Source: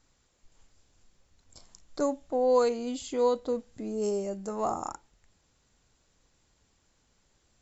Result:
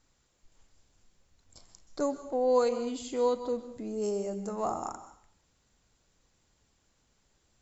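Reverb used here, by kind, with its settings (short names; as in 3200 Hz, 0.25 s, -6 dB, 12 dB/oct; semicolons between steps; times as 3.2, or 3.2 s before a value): plate-style reverb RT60 0.57 s, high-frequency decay 0.95×, pre-delay 0.115 s, DRR 11.5 dB; gain -2 dB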